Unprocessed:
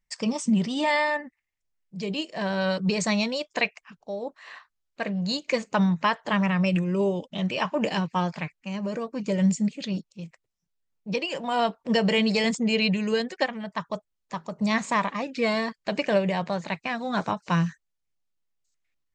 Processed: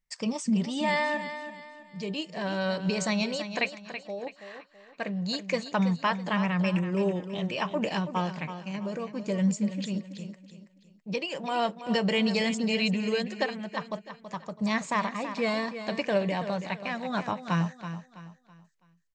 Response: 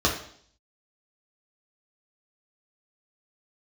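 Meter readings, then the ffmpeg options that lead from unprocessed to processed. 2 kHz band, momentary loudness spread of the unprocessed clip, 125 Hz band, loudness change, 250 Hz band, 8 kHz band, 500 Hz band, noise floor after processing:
-3.0 dB, 12 LU, -3.0 dB, -3.5 dB, -3.0 dB, -3.0 dB, -3.0 dB, -62 dBFS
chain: -af "aecho=1:1:328|656|984|1312:0.299|0.104|0.0366|0.0128,volume=0.668"

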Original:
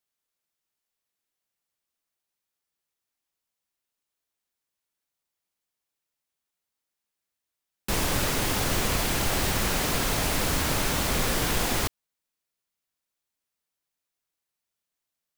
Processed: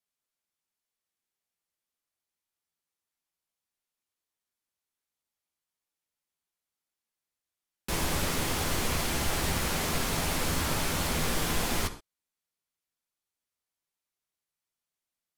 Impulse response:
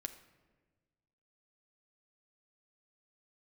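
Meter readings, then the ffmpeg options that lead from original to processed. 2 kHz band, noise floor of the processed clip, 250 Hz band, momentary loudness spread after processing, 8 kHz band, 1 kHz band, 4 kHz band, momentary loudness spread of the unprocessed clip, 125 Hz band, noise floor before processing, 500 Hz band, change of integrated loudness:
-3.5 dB, under -85 dBFS, -3.0 dB, 3 LU, -3.5 dB, -3.0 dB, -3.5 dB, 3 LU, -3.0 dB, under -85 dBFS, -4.0 dB, -4.0 dB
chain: -filter_complex "[1:a]atrim=start_sample=2205,atrim=end_sample=3528,asetrate=26460,aresample=44100[s0];[0:a][s0]afir=irnorm=-1:irlink=0,volume=0.668"

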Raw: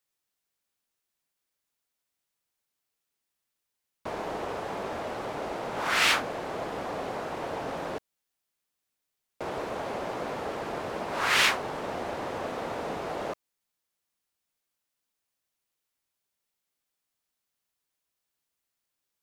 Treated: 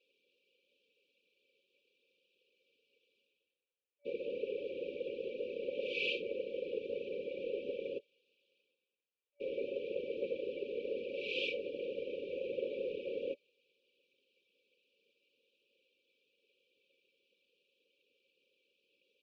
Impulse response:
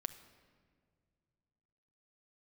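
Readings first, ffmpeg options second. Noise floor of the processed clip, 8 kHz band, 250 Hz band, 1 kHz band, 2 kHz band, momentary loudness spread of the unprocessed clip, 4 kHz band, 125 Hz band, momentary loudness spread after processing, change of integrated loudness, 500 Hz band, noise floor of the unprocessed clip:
under -85 dBFS, under -35 dB, -9.0 dB, under -40 dB, -14.5 dB, 13 LU, -13.0 dB, -18.5 dB, 6 LU, -9.5 dB, -3.0 dB, -84 dBFS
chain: -filter_complex "[0:a]acrossover=split=610[s0][s1];[s1]asoftclip=type=hard:threshold=0.0531[s2];[s0][s2]amix=inputs=2:normalize=0,highpass=f=370:w=0.5412,highpass=f=370:w=1.3066,equalizer=f=480:t=q:w=4:g=6,equalizer=f=700:t=q:w=4:g=-9,equalizer=f=1900:t=q:w=4:g=4,lowpass=f=2900:w=0.5412,lowpass=f=2900:w=1.3066,areverse,acompressor=mode=upward:threshold=0.00282:ratio=2.5,areverse,aecho=1:1:3.9:0.97,afftfilt=real='hypot(re,im)*cos(2*PI*random(0))':imag='hypot(re,im)*sin(2*PI*random(1))':win_size=512:overlap=0.75,afftfilt=real='re*(1-between(b*sr/4096,580,2300))':imag='im*(1-between(b*sr/4096,580,2300))':win_size=4096:overlap=0.75"

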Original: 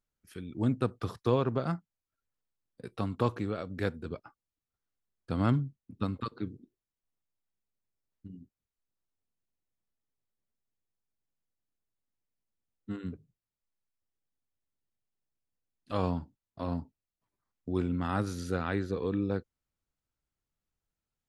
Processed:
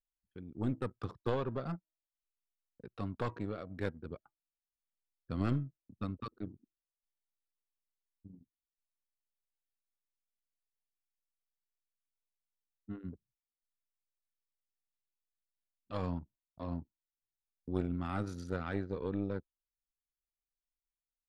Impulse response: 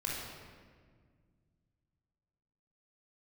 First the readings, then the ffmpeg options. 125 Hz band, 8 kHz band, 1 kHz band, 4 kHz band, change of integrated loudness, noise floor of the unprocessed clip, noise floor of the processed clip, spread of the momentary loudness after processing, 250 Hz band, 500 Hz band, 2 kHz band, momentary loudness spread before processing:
-6.0 dB, no reading, -7.0 dB, -7.5 dB, -6.0 dB, under -85 dBFS, under -85 dBFS, 16 LU, -6.0 dB, -6.0 dB, -5.5 dB, 18 LU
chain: -af "aeval=exprs='0.237*(cos(1*acos(clip(val(0)/0.237,-1,1)))-cos(1*PI/2))+0.119*(cos(2*acos(clip(val(0)/0.237,-1,1)))-cos(2*PI/2))+0.00422*(cos(7*acos(clip(val(0)/0.237,-1,1)))-cos(7*PI/2))':c=same,bandreject=f=321.3:t=h:w=4,bandreject=f=642.6:t=h:w=4,bandreject=f=963.9:t=h:w=4,bandreject=f=1285.2:t=h:w=4,bandreject=f=1606.5:t=h:w=4,bandreject=f=1927.8:t=h:w=4,bandreject=f=2249.1:t=h:w=4,bandreject=f=2570.4:t=h:w=4,bandreject=f=2891.7:t=h:w=4,bandreject=f=3213:t=h:w=4,bandreject=f=3534.3:t=h:w=4,bandreject=f=3855.6:t=h:w=4,bandreject=f=4176.9:t=h:w=4,bandreject=f=4498.2:t=h:w=4,bandreject=f=4819.5:t=h:w=4,bandreject=f=5140.8:t=h:w=4,bandreject=f=5462.1:t=h:w=4,bandreject=f=5783.4:t=h:w=4,bandreject=f=6104.7:t=h:w=4,anlmdn=0.0631,volume=0.562"

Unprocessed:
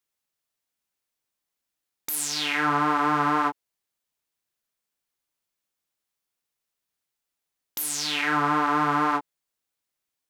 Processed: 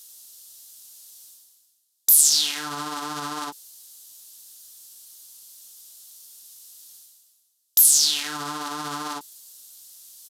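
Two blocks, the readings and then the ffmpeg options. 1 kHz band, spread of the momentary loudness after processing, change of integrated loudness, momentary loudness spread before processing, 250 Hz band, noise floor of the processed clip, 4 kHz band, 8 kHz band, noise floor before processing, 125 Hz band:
-9.5 dB, 19 LU, +4.5 dB, 8 LU, -9.0 dB, -69 dBFS, +7.5 dB, +13.5 dB, -85 dBFS, -9.0 dB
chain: -af "alimiter=limit=0.141:level=0:latency=1:release=14,areverse,acompressor=mode=upward:threshold=0.0112:ratio=2.5,areverse,aexciter=amount=7.8:drive=6.2:freq=3300,aresample=32000,aresample=44100,volume=0.501"

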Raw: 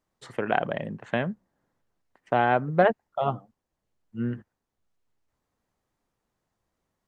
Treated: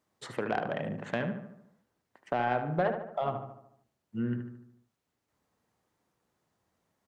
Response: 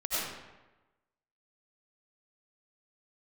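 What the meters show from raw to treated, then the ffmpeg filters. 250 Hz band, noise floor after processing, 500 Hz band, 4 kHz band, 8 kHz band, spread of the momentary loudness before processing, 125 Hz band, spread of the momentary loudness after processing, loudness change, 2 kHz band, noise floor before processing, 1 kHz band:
-3.5 dB, -83 dBFS, -6.5 dB, -5.5 dB, no reading, 16 LU, -4.0 dB, 14 LU, -6.5 dB, -7.0 dB, -83 dBFS, -6.5 dB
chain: -filter_complex "[0:a]highpass=89,bandreject=f=132.2:t=h:w=4,bandreject=f=264.4:t=h:w=4,bandreject=f=396.6:t=h:w=4,bandreject=f=528.8:t=h:w=4,bandreject=f=661:t=h:w=4,bandreject=f=793.2:t=h:w=4,bandreject=f=925.4:t=h:w=4,bandreject=f=1057.6:t=h:w=4,bandreject=f=1189.8:t=h:w=4,bandreject=f=1322:t=h:w=4,bandreject=f=1454.2:t=h:w=4,bandreject=f=1586.4:t=h:w=4,acompressor=threshold=0.0178:ratio=2,asoftclip=type=tanh:threshold=0.1,asplit=2[s0][s1];[s1]adelay=74,lowpass=f=2500:p=1,volume=0.422,asplit=2[s2][s3];[s3]adelay=74,lowpass=f=2500:p=1,volume=0.54,asplit=2[s4][s5];[s5]adelay=74,lowpass=f=2500:p=1,volume=0.54,asplit=2[s6][s7];[s7]adelay=74,lowpass=f=2500:p=1,volume=0.54,asplit=2[s8][s9];[s9]adelay=74,lowpass=f=2500:p=1,volume=0.54,asplit=2[s10][s11];[s11]adelay=74,lowpass=f=2500:p=1,volume=0.54,asplit=2[s12][s13];[s13]adelay=74,lowpass=f=2500:p=1,volume=0.54[s14];[s2][s4][s6][s8][s10][s12][s14]amix=inputs=7:normalize=0[s15];[s0][s15]amix=inputs=2:normalize=0,volume=1.33"

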